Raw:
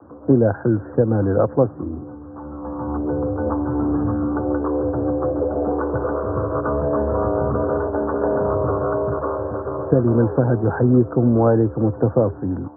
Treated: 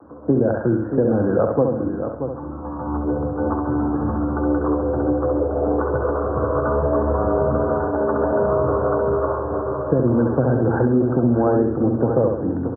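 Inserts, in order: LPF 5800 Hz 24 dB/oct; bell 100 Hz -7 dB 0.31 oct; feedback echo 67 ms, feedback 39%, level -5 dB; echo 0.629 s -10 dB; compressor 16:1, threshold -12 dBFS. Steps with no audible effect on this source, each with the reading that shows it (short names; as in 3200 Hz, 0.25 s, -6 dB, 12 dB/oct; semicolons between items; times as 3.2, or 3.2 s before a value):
LPF 5800 Hz: input band ends at 1500 Hz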